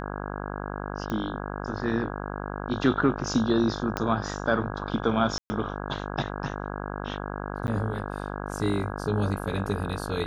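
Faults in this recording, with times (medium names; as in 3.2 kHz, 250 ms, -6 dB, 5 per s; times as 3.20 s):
buzz 50 Hz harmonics 33 -34 dBFS
1.10 s: pop -18 dBFS
3.97 s: pop -12 dBFS
5.38–5.50 s: dropout 120 ms
7.67–7.68 s: dropout 9.9 ms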